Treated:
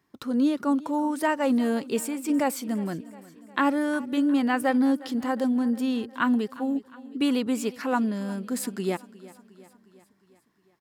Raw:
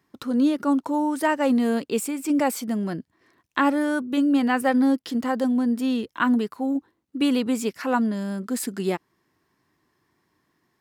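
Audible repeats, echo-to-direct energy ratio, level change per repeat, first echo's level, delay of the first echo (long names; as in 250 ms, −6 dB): 4, −17.5 dB, −4.5 dB, −19.5 dB, 358 ms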